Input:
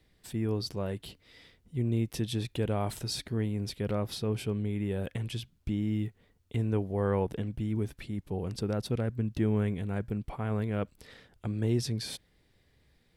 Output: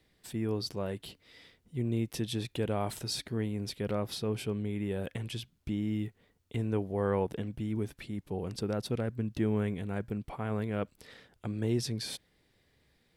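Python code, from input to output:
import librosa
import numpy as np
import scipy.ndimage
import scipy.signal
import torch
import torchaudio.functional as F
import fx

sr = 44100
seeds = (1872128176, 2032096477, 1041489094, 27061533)

y = fx.low_shelf(x, sr, hz=100.0, db=-8.5)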